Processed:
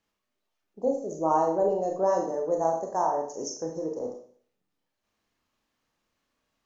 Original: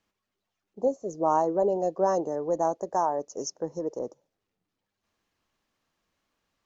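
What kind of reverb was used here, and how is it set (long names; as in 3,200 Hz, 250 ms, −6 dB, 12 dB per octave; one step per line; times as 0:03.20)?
four-comb reverb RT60 0.51 s, combs from 25 ms, DRR 1 dB
level −2.5 dB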